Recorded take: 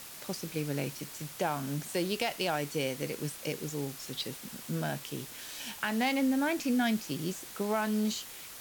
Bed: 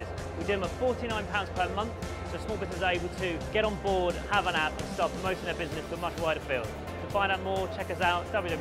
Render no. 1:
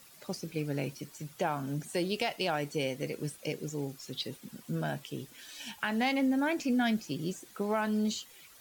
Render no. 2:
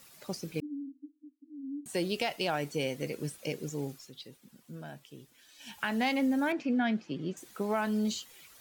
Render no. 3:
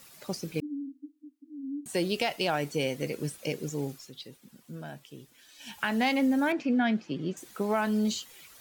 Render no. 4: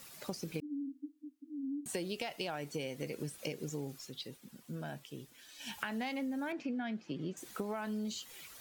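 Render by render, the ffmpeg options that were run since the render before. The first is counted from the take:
-af "afftdn=nr=12:nf=-46"
-filter_complex "[0:a]asettb=1/sr,asplit=3[a][b][c];[a]atrim=end=0.604[d];[b]atrim=start=0.6:end=1.86,asetpts=PTS-STARTPTS,afade=t=in:d=0.004:c=qsin,afade=t=out:st=1.256:d=0.004:c=qsin,asuperpass=centerf=280:order=12:qfactor=5[e];[c]atrim=start=1.856[f];[d][e]acrossfade=d=0.004:c1=hsin:c2=qsin[g];[g][f]acrossfade=d=0.004:c1=qsin:c2=hsin,asettb=1/sr,asplit=3[h][i][j];[h]atrim=end=6.524[k];[i]atrim=start=6.52:end=7.37,asetpts=PTS-STARTPTS,afade=t=in:d=0.004:c=qsin,afade=t=out:st=0.846:d=0.004:c=qsin,highpass=140,lowpass=2.8k[l];[j]atrim=start=7.366[m];[k][l]acrossfade=d=0.004:c1=hsin:c2=qsin[n];[n][m]acrossfade=d=0.004:c1=qsin:c2=hsin,asplit=3[o][p][q];[o]atrim=end=4.12,asetpts=PTS-STARTPTS,afade=t=out:st=3.9:d=0.22:silence=0.298538[r];[p]atrim=start=4.12:end=5.58,asetpts=PTS-STARTPTS,volume=-10.5dB[s];[q]atrim=start=5.58,asetpts=PTS-STARTPTS,afade=t=in:d=0.22:silence=0.298538[t];[r][s][t]concat=n=3:v=0:a=1"
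-af "volume=3dB"
-af "acompressor=threshold=-36dB:ratio=6"

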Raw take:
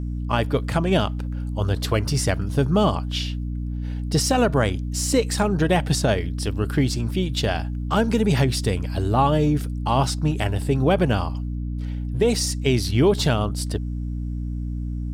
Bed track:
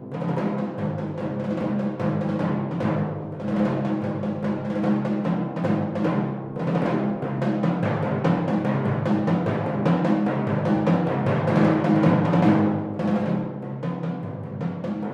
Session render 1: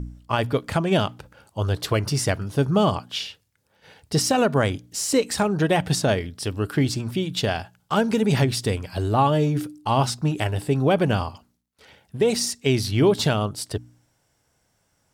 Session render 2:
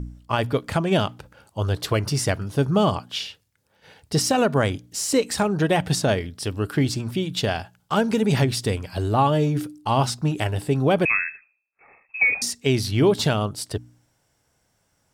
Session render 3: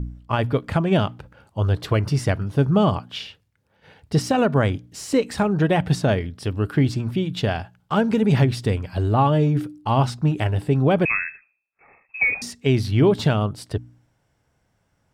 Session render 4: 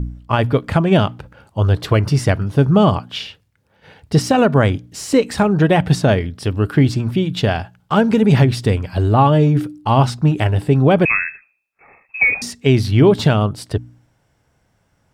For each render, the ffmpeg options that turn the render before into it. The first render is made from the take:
-af "bandreject=f=60:t=h:w=4,bandreject=f=120:t=h:w=4,bandreject=f=180:t=h:w=4,bandreject=f=240:t=h:w=4,bandreject=f=300:t=h:w=4"
-filter_complex "[0:a]asettb=1/sr,asplit=3[a][b][c];[a]atrim=end=11.054[d];[b]atrim=start=11.05:end=12.42,asetpts=PTS-STARTPTS,afade=t=in:d=0.004:c=qsin,afade=t=out:st=1.366:d=0.004:c=qsin,lowpass=f=2.3k:t=q:w=0.5098,lowpass=f=2.3k:t=q:w=0.6013,lowpass=f=2.3k:t=q:w=0.9,lowpass=f=2.3k:t=q:w=2.563,afreqshift=-2700[e];[c]atrim=start=12.416[f];[d][e]acrossfade=d=0.004:c1=hsin:c2=qsin[g];[g][f]acrossfade=d=0.004:c1=qsin:c2=hsin"
-af "bass=f=250:g=4,treble=f=4k:g=-10"
-af "volume=5.5dB,alimiter=limit=-2dB:level=0:latency=1"

